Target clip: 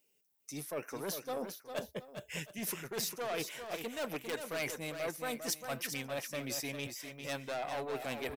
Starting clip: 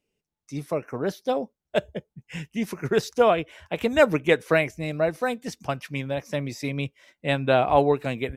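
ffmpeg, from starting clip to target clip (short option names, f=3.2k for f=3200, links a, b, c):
-af "aeval=exprs='(tanh(8.91*val(0)+0.45)-tanh(0.45))/8.91':c=same,areverse,acompressor=threshold=-35dB:ratio=10,areverse,aemphasis=mode=production:type=bsi,aecho=1:1:401|716:0.422|0.141,volume=1dB"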